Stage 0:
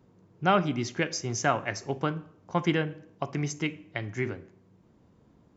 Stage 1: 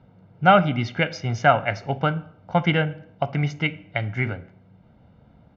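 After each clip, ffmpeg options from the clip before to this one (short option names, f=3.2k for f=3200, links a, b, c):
-af "lowpass=f=3.8k:w=0.5412,lowpass=f=3.8k:w=1.3066,aecho=1:1:1.4:0.64,volume=6dB"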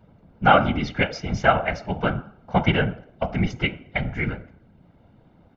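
-af "bandreject=f=62.72:t=h:w=4,bandreject=f=125.44:t=h:w=4,bandreject=f=188.16:t=h:w=4,bandreject=f=250.88:t=h:w=4,bandreject=f=313.6:t=h:w=4,bandreject=f=376.32:t=h:w=4,bandreject=f=439.04:t=h:w=4,bandreject=f=501.76:t=h:w=4,bandreject=f=564.48:t=h:w=4,bandreject=f=627.2:t=h:w=4,bandreject=f=689.92:t=h:w=4,bandreject=f=752.64:t=h:w=4,bandreject=f=815.36:t=h:w=4,bandreject=f=878.08:t=h:w=4,bandreject=f=940.8:t=h:w=4,bandreject=f=1.00352k:t=h:w=4,bandreject=f=1.06624k:t=h:w=4,bandreject=f=1.12896k:t=h:w=4,bandreject=f=1.19168k:t=h:w=4,bandreject=f=1.2544k:t=h:w=4,bandreject=f=1.31712k:t=h:w=4,bandreject=f=1.37984k:t=h:w=4,bandreject=f=1.44256k:t=h:w=4,bandreject=f=1.50528k:t=h:w=4,afftfilt=real='hypot(re,im)*cos(2*PI*random(0))':imag='hypot(re,im)*sin(2*PI*random(1))':win_size=512:overlap=0.75,volume=6dB"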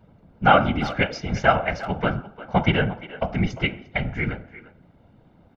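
-filter_complex "[0:a]asplit=2[a][b];[b]adelay=350,highpass=300,lowpass=3.4k,asoftclip=type=hard:threshold=-9.5dB,volume=-15dB[c];[a][c]amix=inputs=2:normalize=0"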